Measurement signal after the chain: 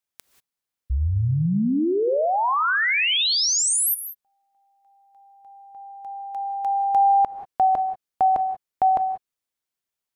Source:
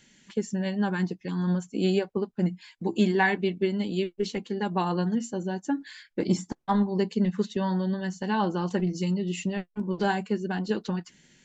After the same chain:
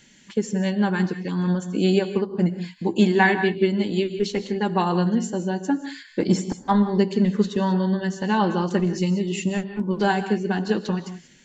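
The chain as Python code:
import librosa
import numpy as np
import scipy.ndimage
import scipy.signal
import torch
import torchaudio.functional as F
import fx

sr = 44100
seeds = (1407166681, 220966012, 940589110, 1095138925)

y = fx.rev_gated(x, sr, seeds[0], gate_ms=210, shape='rising', drr_db=10.5)
y = y * 10.0 ** (5.0 / 20.0)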